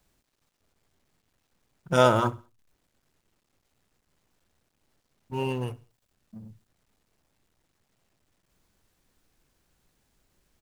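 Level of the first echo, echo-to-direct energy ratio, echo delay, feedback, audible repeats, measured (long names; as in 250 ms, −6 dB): −22.0 dB, −21.5 dB, 67 ms, 37%, 2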